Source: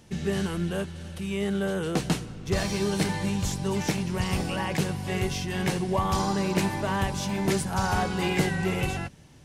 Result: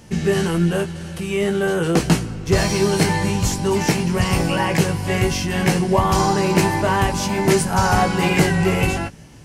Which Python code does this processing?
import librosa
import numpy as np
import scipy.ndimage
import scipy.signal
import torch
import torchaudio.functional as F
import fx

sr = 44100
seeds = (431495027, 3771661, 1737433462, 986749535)

y = fx.peak_eq(x, sr, hz=3600.0, db=-6.0, octaves=0.25)
y = fx.doubler(y, sr, ms=18.0, db=-6.0)
y = F.gain(torch.from_numpy(y), 8.5).numpy()